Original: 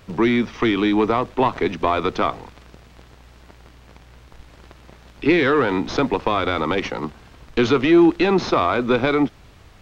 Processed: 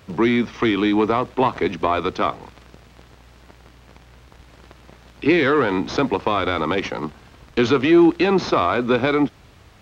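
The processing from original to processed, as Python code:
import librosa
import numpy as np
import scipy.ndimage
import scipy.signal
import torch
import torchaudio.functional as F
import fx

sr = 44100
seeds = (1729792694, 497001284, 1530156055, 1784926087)

y = scipy.signal.sosfilt(scipy.signal.butter(2, 51.0, 'highpass', fs=sr, output='sos'), x)
y = fx.band_widen(y, sr, depth_pct=70, at=(1.87, 2.41))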